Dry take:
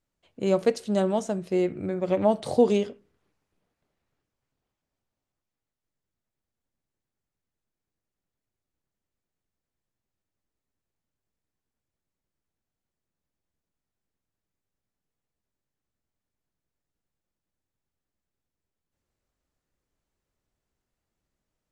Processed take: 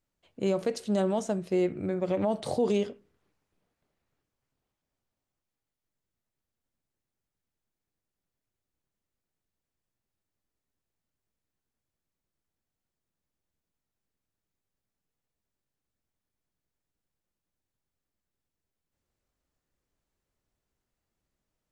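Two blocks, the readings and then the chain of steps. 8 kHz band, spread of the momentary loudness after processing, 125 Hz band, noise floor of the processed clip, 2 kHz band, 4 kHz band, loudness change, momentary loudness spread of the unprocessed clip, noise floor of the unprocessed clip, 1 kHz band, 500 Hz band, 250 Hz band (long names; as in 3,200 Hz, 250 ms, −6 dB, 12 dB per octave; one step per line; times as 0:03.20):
−1.5 dB, 4 LU, −2.0 dB, below −85 dBFS, −3.0 dB, −2.5 dB, −4.0 dB, 7 LU, below −85 dBFS, −5.0 dB, −4.5 dB, −3.0 dB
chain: brickwall limiter −16.5 dBFS, peak gain reduction 8 dB
level −1 dB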